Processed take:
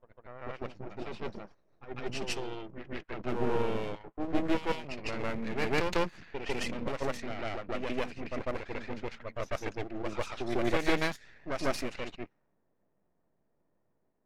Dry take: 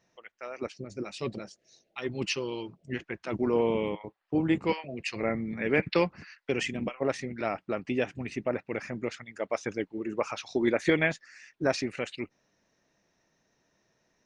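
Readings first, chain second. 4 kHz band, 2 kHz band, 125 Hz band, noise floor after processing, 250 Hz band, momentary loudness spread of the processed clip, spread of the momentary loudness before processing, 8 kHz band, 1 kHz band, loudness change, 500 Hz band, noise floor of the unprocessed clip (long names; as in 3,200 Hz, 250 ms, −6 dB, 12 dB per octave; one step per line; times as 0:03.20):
−2.0 dB, −4.0 dB, −3.0 dB, −75 dBFS, −5.0 dB, 12 LU, 12 LU, −2.5 dB, 0.0 dB, −4.0 dB, −4.5 dB, −75 dBFS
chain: half-wave rectification
backwards echo 149 ms −4 dB
low-pass that shuts in the quiet parts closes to 830 Hz, open at −27 dBFS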